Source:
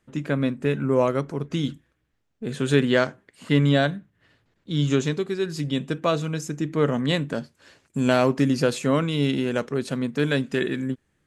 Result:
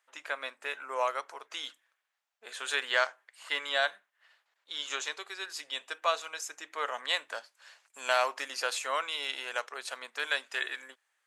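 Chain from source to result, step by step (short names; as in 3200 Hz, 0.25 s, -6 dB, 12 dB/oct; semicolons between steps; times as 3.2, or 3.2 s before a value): HPF 750 Hz 24 dB/oct; gain -1.5 dB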